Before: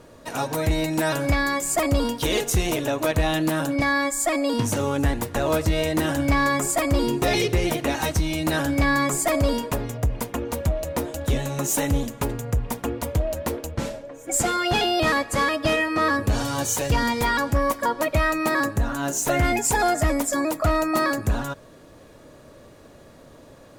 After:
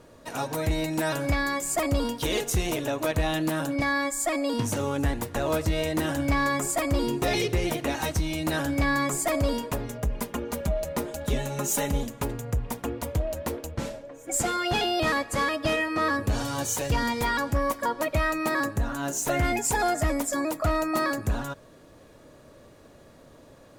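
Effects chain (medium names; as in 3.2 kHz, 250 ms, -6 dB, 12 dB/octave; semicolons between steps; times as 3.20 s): 9.87–12.04 s: comb 4.9 ms, depth 58%; trim -4 dB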